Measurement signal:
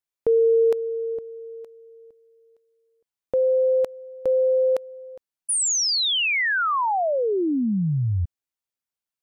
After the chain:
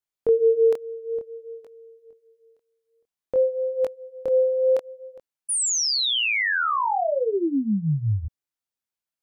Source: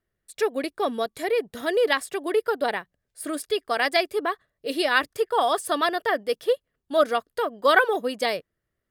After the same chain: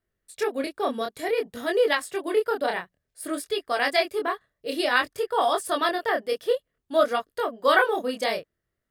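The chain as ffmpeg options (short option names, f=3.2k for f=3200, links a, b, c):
-af "flanger=delay=20:depth=7.7:speed=0.55,volume=2dB"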